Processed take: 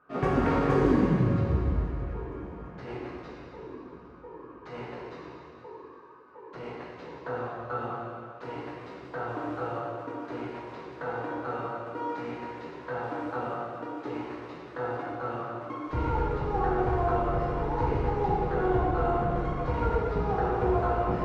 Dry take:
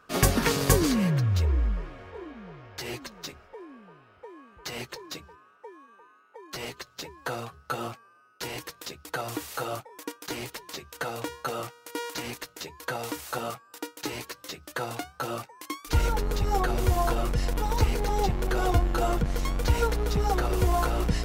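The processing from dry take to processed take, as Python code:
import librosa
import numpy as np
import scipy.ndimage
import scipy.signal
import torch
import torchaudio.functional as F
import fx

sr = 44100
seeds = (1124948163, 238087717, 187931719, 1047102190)

p1 = scipy.signal.sosfilt(scipy.signal.butter(2, 1300.0, 'lowpass', fs=sr, output='sos'), x)
p2 = fx.low_shelf(p1, sr, hz=67.0, db=-11.5)
p3 = fx.doubler(p2, sr, ms=16.0, db=-11.0)
p4 = p3 + fx.echo_feedback(p3, sr, ms=808, feedback_pct=58, wet_db=-23.5, dry=0)
p5 = fx.rev_plate(p4, sr, seeds[0], rt60_s=2.4, hf_ratio=1.0, predelay_ms=0, drr_db=-6.5)
y = p5 * librosa.db_to_amplitude(-5.0)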